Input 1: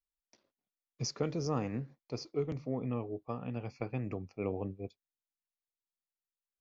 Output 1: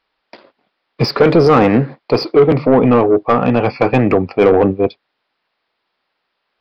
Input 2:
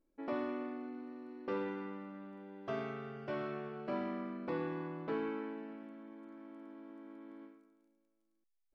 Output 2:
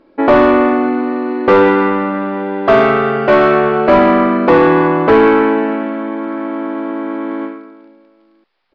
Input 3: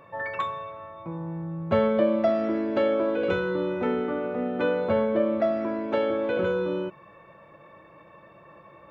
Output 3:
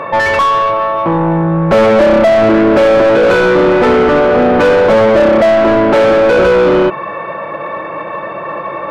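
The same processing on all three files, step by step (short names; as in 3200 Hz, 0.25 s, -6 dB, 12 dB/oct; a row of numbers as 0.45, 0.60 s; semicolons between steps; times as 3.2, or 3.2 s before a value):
downsampling 11025 Hz; overdrive pedal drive 31 dB, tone 1200 Hz, clips at -10.5 dBFS; normalise peaks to -1.5 dBFS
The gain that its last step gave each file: +12.5, +14.0, +9.5 dB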